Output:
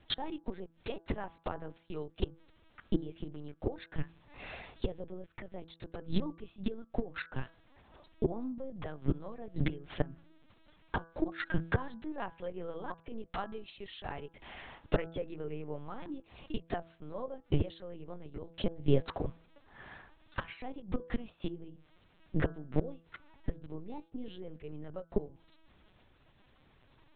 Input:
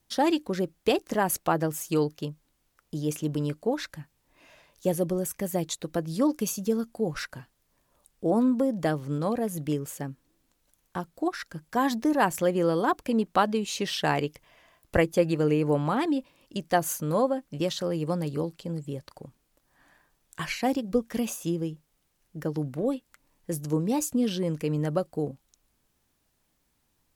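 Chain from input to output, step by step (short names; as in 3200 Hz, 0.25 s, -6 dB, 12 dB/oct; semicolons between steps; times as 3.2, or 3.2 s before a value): flipped gate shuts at -24 dBFS, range -26 dB; LPC vocoder at 8 kHz pitch kept; de-hum 165.4 Hz, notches 10; gain +10.5 dB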